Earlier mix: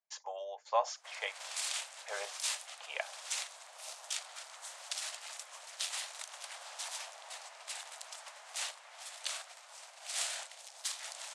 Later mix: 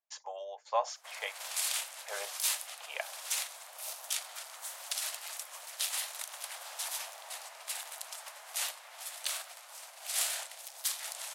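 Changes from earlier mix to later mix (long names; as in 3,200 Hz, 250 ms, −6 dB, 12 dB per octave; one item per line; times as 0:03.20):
background: send +9.0 dB
master: remove low-pass filter 8,700 Hz 24 dB per octave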